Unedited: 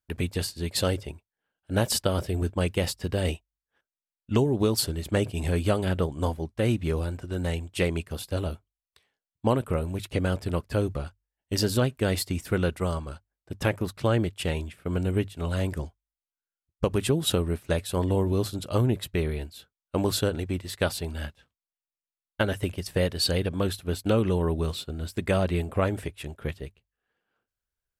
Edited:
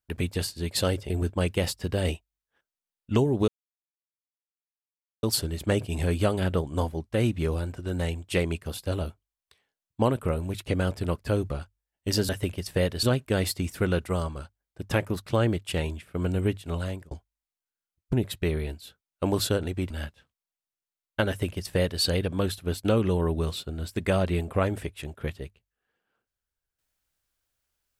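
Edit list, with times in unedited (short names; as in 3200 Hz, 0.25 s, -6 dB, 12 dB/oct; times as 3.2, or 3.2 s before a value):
1.1–2.3 cut
4.68 insert silence 1.75 s
15.43–15.82 fade out
16.84–18.85 cut
20.62–21.11 cut
22.49–23.23 copy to 11.74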